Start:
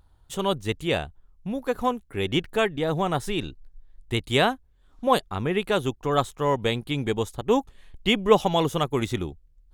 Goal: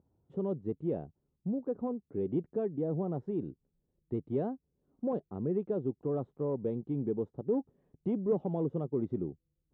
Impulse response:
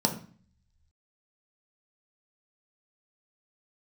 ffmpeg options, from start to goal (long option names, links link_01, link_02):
-filter_complex "[0:a]asplit=2[link_01][link_02];[link_02]acompressor=threshold=-30dB:ratio=6,volume=0.5dB[link_03];[link_01][link_03]amix=inputs=2:normalize=0,asoftclip=type=tanh:threshold=-13dB,asuperpass=centerf=260:order=4:qfactor=0.72,volume=-7dB"